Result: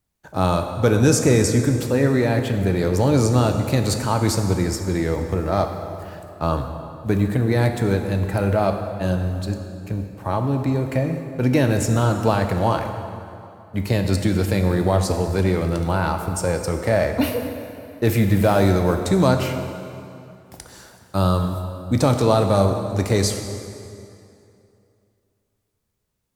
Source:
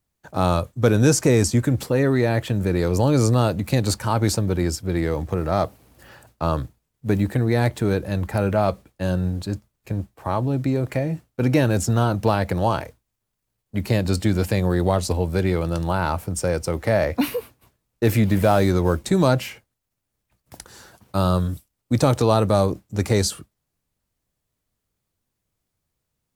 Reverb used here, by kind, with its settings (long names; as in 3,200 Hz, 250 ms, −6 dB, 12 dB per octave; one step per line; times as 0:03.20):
dense smooth reverb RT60 2.7 s, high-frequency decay 0.75×, DRR 5 dB